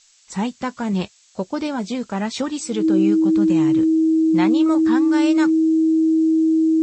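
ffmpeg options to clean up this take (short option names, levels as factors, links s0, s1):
-af "bandreject=f=320:w=30,afftdn=nr=13:nf=-52"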